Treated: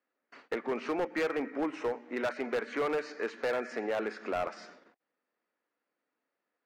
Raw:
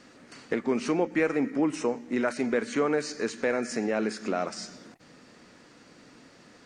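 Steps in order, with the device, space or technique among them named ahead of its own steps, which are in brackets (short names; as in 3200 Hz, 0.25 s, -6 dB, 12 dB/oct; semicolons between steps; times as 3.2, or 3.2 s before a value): walkie-talkie (BPF 450–2300 Hz; hard clip -26 dBFS, distortion -12 dB; gate -52 dBFS, range -28 dB)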